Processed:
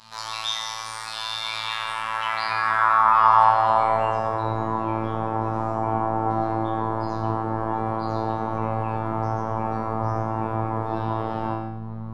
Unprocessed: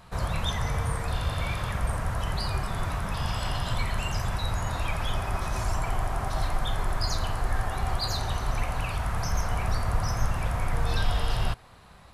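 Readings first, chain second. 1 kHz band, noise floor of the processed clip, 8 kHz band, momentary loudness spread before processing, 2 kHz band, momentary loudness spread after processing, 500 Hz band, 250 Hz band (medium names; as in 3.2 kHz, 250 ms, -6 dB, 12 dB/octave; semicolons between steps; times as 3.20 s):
+12.5 dB, -33 dBFS, no reading, 2 LU, +5.0 dB, 11 LU, +9.0 dB, +9.0 dB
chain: peaking EQ 970 Hz +13.5 dB 0.69 oct; in parallel at +1.5 dB: peak limiter -21 dBFS, peak gain reduction 10 dB; on the sum: hum 50 Hz, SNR 10 dB; band-pass sweep 4.7 kHz -> 340 Hz, 1.37–4.70 s; on a send: flutter echo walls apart 3.5 m, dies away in 0.56 s; on the sum: robot voice 111 Hz; gated-style reverb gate 170 ms rising, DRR 7.5 dB; trim +7 dB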